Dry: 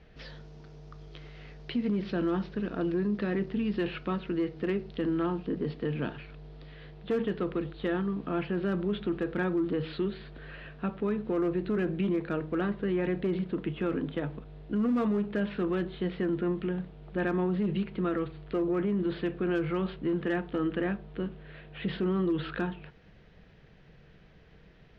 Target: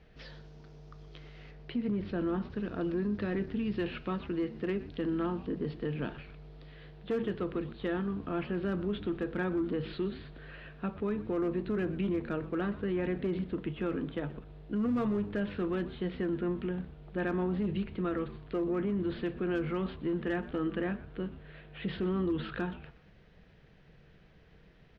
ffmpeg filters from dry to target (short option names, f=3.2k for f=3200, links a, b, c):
-filter_complex "[0:a]asettb=1/sr,asplit=3[a][b][c];[a]atrim=end=1.514[d];[b]atrim=start=1.51:end=2.5,asetpts=PTS-STARTPTS,afade=t=in:d=0.004:c=qsin,afade=t=out:st=0.986:d=0.004:c=qsin,lowpass=f=2.4k:p=1[e];[c]atrim=start=2.496[f];[d][e]acrossfade=d=0.004:c1=hsin:c2=qsin[g];[g][f]acrossfade=d=0.004:c1=qsin:c2=hsin,asplit=4[h][i][j][k];[i]adelay=123,afreqshift=-110,volume=-16.5dB[l];[j]adelay=246,afreqshift=-220,volume=-25.9dB[m];[k]adelay=369,afreqshift=-330,volume=-35.2dB[n];[h][l][m][n]amix=inputs=4:normalize=0,volume=-3dB"